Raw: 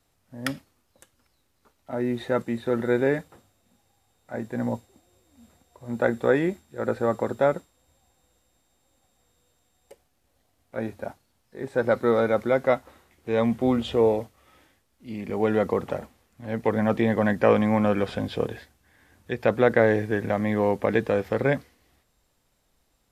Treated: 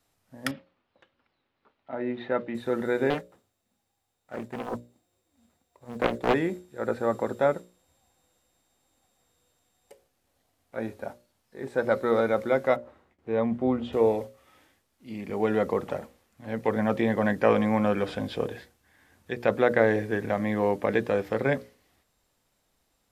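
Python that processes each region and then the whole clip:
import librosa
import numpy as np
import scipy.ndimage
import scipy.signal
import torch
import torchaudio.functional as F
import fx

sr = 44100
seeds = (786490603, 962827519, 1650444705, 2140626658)

y = fx.chain(x, sr, fx.lowpass(hz=3500.0, slope=24),
    fx.low_shelf(hz=110.0, db=-10.0), at=(0.51, 2.55))
y = fx.chain(y, sr, fx.law_mismatch(coded='A'),
    fx.doppler_dist(depth_ms=0.86), at=(3.1, 6.34))
y = fx.chain(y, sr, fx.lowpass(hz=1200.0, slope=6),
    fx.gate_hold(open_db=-51.0, close_db=-58.0, hold_ms=71.0, range_db=-21, attack_ms=1.4, release_ms=100.0), at=(12.76, 13.93))
y = fx.low_shelf(y, sr, hz=94.0, db=-6.0)
y = fx.hum_notches(y, sr, base_hz=60, count=10)
y = y * librosa.db_to_amplitude(-1.5)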